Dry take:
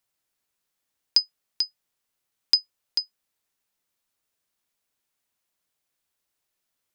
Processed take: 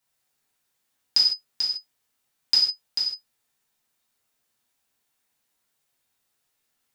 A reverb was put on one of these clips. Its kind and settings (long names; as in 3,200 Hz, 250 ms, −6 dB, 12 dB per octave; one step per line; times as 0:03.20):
reverb whose tail is shaped and stops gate 180 ms falling, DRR −7 dB
level −2.5 dB